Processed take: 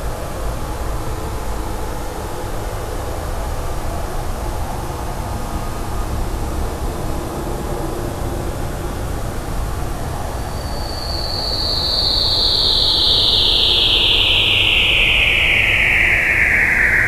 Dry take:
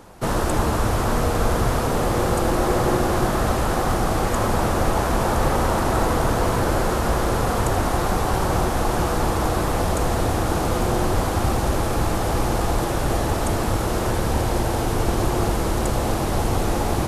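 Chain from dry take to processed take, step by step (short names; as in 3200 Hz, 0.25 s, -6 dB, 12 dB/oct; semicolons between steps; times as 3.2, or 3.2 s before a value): phaser 0.7 Hz, delay 2.4 ms, feedback 38%; painted sound fall, 13.39–14.84, 500–4700 Hz -11 dBFS; Paulstretch 8.2×, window 0.50 s, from 11.92; gain -3.5 dB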